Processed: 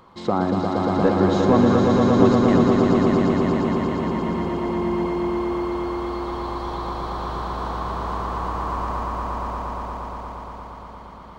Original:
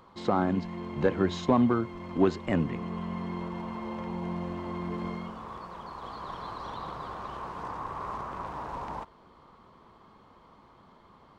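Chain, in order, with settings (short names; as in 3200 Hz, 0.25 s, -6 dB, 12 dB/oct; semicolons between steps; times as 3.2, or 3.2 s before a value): dynamic EQ 2200 Hz, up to -4 dB, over -46 dBFS, Q 0.73; on a send: swelling echo 0.117 s, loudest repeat 5, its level -4 dB; on the sum: gain +5 dB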